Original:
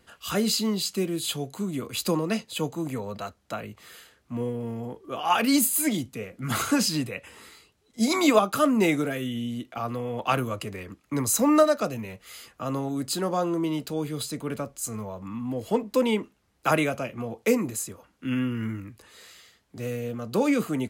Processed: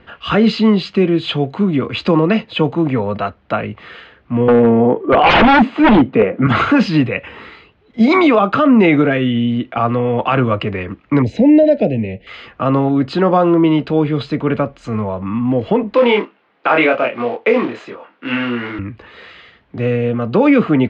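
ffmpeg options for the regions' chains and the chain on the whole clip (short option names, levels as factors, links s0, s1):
-filter_complex "[0:a]asettb=1/sr,asplit=3[s0][s1][s2];[s0]atrim=end=4.484[s3];[s1]atrim=start=4.48:end=6.47,asetpts=PTS-STARTPTS,afade=t=in:d=0.004:c=qsin,afade=t=out:st=1.986:d=0.004:c=qsin,highpass=130,lowpass=3600,equalizer=f=470:w=0.35:g=10.5,aeval=exprs='0.126*(abs(mod(val(0)/0.126+3,4)-2)-1)':c=same[s4];[s2]atrim=start=6.466[s5];[s3][s4]acrossfade=d=0.004:c1=hsin:c2=qsin[s6];[s6][s5]acrossfade=d=0.004:c1=qsin:c2=hsin,asettb=1/sr,asplit=3[s7][s8][s9];[s7]atrim=end=11.224[s10];[s8]atrim=start=11.22:end=12.27,asetpts=PTS-STARTPTS,afade=t=in:d=0.004:c=qsin,afade=t=out:st=1.046:d=0.004:c=qsin,asuperstop=centerf=1200:order=4:qfactor=0.78,aemphasis=mode=reproduction:type=75fm[s11];[s9]atrim=start=12.266[s12];[s10][s11]acrossfade=d=0.004:c1=hsin:c2=qsin[s13];[s13][s12]acrossfade=d=0.004:c1=qsin:c2=hsin,asettb=1/sr,asplit=3[s14][s15][s16];[s14]atrim=end=15.944[s17];[s15]atrim=start=15.94:end=18.79,asetpts=PTS-STARTPTS,afade=t=in:d=0.004:c=qsin,afade=t=out:st=2.846:d=0.004:c=qsin,acrusher=bits=4:mode=log:mix=0:aa=0.000001,highpass=380,lowpass=5100,asplit=2[s18][s19];[s19]adelay=25,volume=0.708[s20];[s18][s20]amix=inputs=2:normalize=0,atrim=end_sample=125685[s21];[s16]atrim=start=18.786[s22];[s17][s21]acrossfade=d=0.004:c1=hsin:c2=qsin[s23];[s23][s22]acrossfade=d=0.004:c1=qsin:c2=hsin,lowpass=f=3000:w=0.5412,lowpass=f=3000:w=1.3066,alimiter=level_in=7.5:limit=0.891:release=50:level=0:latency=1,volume=0.75"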